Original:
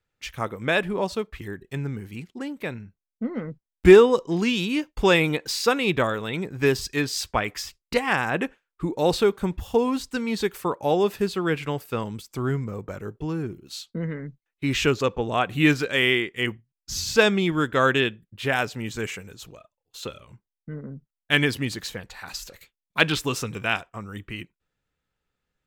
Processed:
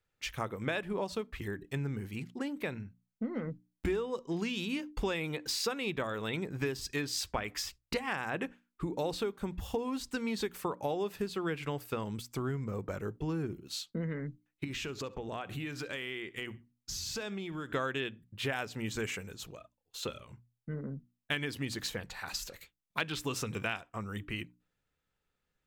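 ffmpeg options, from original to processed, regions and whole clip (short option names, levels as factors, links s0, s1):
-filter_complex "[0:a]asettb=1/sr,asplit=3[s0][s1][s2];[s0]atrim=end=14.644[s3];[s1]atrim=start=14.64:end=17.74,asetpts=PTS-STARTPTS,afade=t=in:d=0.004:c=qsin,afade=t=out:st=3.096:d=0.004:c=qsin,acompressor=threshold=0.0251:ratio=12:attack=3.2:release=140:knee=1:detection=peak,aecho=1:1:67|134:0.0841|0.0252,atrim=end_sample=136710[s4];[s2]atrim=start=17.736[s5];[s3][s4]acrossfade=d=0.004:c1=hsin:c2=qsin[s6];[s6][s5]acrossfade=d=0.004:c1=qsin:c2=hsin,acompressor=threshold=0.0398:ratio=8,bandreject=f=60:t=h:w=6,bandreject=f=120:t=h:w=6,bandreject=f=180:t=h:w=6,bandreject=f=240:t=h:w=6,bandreject=f=300:t=h:w=6,volume=0.75"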